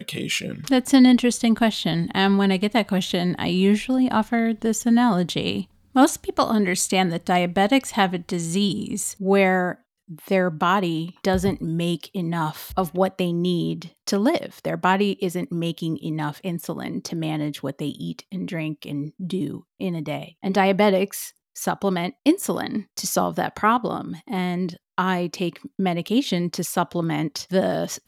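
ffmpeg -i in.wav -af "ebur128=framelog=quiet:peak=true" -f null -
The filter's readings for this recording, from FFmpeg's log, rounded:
Integrated loudness:
  I:         -22.7 LUFS
  Threshold: -32.8 LUFS
Loudness range:
  LRA:         7.4 LU
  Threshold: -43.0 LUFS
  LRA low:   -27.9 LUFS
  LRA high:  -20.6 LUFS
True peak:
  Peak:       -3.5 dBFS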